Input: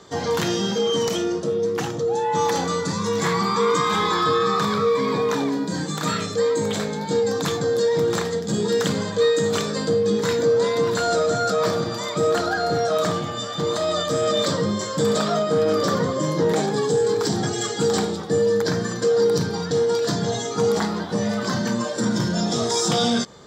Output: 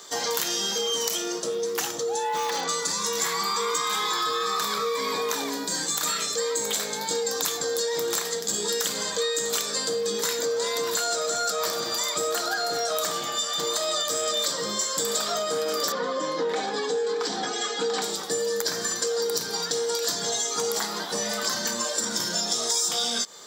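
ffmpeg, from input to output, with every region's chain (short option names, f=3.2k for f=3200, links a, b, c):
-filter_complex "[0:a]asettb=1/sr,asplit=3[a][b][c];[a]atrim=end=2.294[d];[b]atrim=start=2.29:end=2.69,asetpts=PTS-STARTPTS,afade=t=in:d=0.004:c=qsin,afade=t=out:st=0.396:d=0.004:c=qsin,lowpass=4.2k,asoftclip=type=hard:threshold=-16.5dB[e];[c]atrim=start=2.686[f];[d][e]acrossfade=d=0.004:c1=hsin:c2=qsin[g];[g][f]acrossfade=d=0.004:c1=qsin:c2=hsin,asettb=1/sr,asplit=3[h][i][j];[h]atrim=end=15.924[k];[i]atrim=start=15.92:end=18.02,asetpts=PTS-STARTPTS,afade=t=in:d=0.004:c=qsin,afade=t=out:st=2.096:d=0.004:c=qsin,highpass=160,lowpass=3.2k,aecho=1:1:4:0.47,atrim=end_sample=92610[l];[j]atrim=start=18.016[m];[k][l]acrossfade=d=0.004:c1=hsin:c2=qsin[n];[n][m]acrossfade=d=0.004:c1=qsin:c2=hsin,highpass=f=290:p=1,aemphasis=mode=production:type=riaa,acompressor=threshold=-24dB:ratio=4"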